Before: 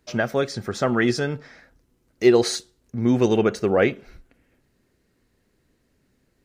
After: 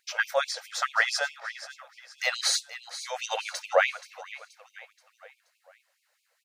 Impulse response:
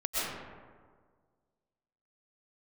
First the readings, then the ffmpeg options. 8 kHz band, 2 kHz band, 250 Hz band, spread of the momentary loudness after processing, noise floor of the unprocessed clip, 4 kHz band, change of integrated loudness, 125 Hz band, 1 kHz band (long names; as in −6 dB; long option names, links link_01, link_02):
+2.0 dB, +1.5 dB, below −40 dB, 18 LU, −68 dBFS, +2.0 dB, −6.5 dB, below −40 dB, −1.0 dB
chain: -af "aecho=1:1:478|956|1434|1912:0.211|0.0888|0.0373|0.0157,afftfilt=real='re*gte(b*sr/1024,470*pow(2300/470,0.5+0.5*sin(2*PI*4.7*pts/sr)))':imag='im*gte(b*sr/1024,470*pow(2300/470,0.5+0.5*sin(2*PI*4.7*pts/sr)))':win_size=1024:overlap=0.75,volume=2dB"